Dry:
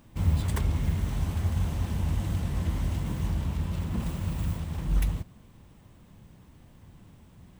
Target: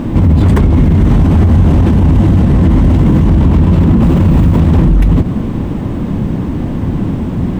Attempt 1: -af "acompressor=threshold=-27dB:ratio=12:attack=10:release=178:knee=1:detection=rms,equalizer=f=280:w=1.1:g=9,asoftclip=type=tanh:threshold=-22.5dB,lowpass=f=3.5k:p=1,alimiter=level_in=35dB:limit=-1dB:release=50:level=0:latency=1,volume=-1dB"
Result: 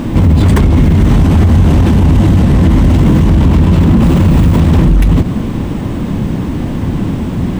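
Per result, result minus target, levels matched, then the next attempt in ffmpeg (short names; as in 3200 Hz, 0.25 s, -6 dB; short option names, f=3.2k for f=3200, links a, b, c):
soft clip: distortion +14 dB; 4000 Hz band +5.5 dB
-af "acompressor=threshold=-27dB:ratio=12:attack=10:release=178:knee=1:detection=rms,equalizer=f=280:w=1.1:g=9,asoftclip=type=tanh:threshold=-14.5dB,lowpass=f=3.5k:p=1,alimiter=level_in=35dB:limit=-1dB:release=50:level=0:latency=1,volume=-1dB"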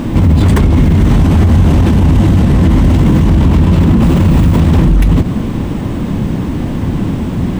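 4000 Hz band +6.0 dB
-af "acompressor=threshold=-27dB:ratio=12:attack=10:release=178:knee=1:detection=rms,equalizer=f=280:w=1.1:g=9,asoftclip=type=tanh:threshold=-14.5dB,lowpass=f=1.3k:p=1,alimiter=level_in=35dB:limit=-1dB:release=50:level=0:latency=1,volume=-1dB"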